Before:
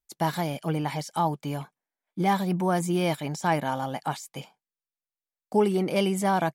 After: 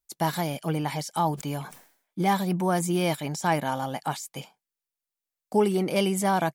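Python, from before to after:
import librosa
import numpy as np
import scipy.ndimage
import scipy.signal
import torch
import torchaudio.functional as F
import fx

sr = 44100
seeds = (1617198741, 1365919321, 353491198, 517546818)

y = fx.high_shelf(x, sr, hz=5200.0, db=5.5)
y = fx.sustainer(y, sr, db_per_s=100.0, at=(1.22, 2.22))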